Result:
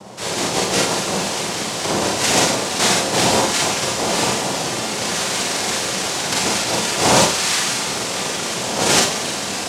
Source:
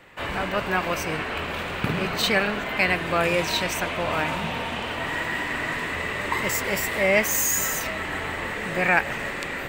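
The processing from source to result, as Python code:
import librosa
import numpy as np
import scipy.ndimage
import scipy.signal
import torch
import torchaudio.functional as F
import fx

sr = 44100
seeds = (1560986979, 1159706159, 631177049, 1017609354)

y = x + 10.0 ** (-42.0 / 20.0) * np.sin(2.0 * np.pi * 490.0 * np.arange(len(x)) / sr)
y = fx.noise_vocoder(y, sr, seeds[0], bands=2)
y = fx.rev_schroeder(y, sr, rt60_s=0.38, comb_ms=32, drr_db=-1.5)
y = y * 10.0 ** (2.5 / 20.0)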